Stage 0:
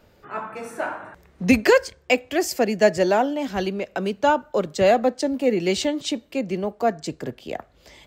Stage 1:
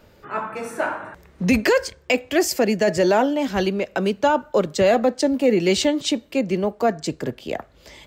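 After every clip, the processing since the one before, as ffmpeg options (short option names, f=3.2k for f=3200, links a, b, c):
-af "bandreject=f=730:w=16,alimiter=limit=-12.5dB:level=0:latency=1:release=16,volume=4dB"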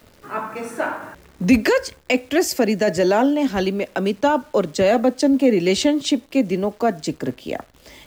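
-af "equalizer=f=270:w=4.5:g=6,acrusher=bits=9:dc=4:mix=0:aa=0.000001"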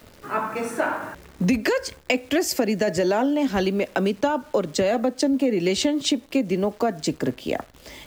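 -af "acompressor=threshold=-20dB:ratio=6,volume=2dB"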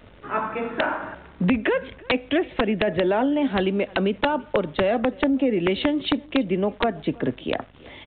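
-af "aeval=exprs='val(0)+0.00224*(sin(2*PI*50*n/s)+sin(2*PI*2*50*n/s)/2+sin(2*PI*3*50*n/s)/3+sin(2*PI*4*50*n/s)/4+sin(2*PI*5*50*n/s)/5)':c=same,aecho=1:1:331:0.0631,aresample=8000,aeval=exprs='(mod(3.76*val(0)+1,2)-1)/3.76':c=same,aresample=44100"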